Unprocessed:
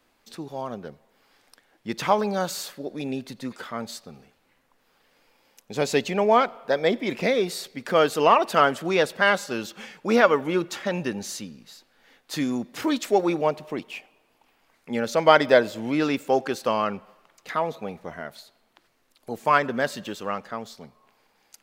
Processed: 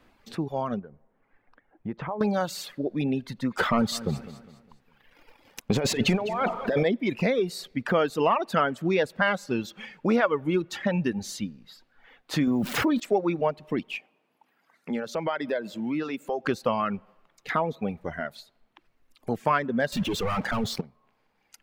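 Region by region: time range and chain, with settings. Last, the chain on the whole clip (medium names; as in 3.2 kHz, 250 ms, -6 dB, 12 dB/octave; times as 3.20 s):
0.79–2.21 s: low-pass 1.4 kHz + compression 2.5:1, threshold -41 dBFS
3.57–6.85 s: compressor with a negative ratio -30 dBFS + waveshaping leveller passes 2 + feedback delay 203 ms, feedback 39%, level -11 dB
12.47–13.00 s: zero-crossing glitches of -29 dBFS + treble shelf 3.8 kHz -8.5 dB + level flattener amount 70%
13.96–16.45 s: high-pass 150 Hz 24 dB/octave + compression 2:1, threshold -39 dBFS
19.92–20.81 s: waveshaping leveller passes 3 + hard clipper -29 dBFS + level flattener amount 70%
whole clip: reverb removal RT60 1.6 s; tone controls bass +7 dB, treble -9 dB; compression 2.5:1, threshold -29 dBFS; trim +5 dB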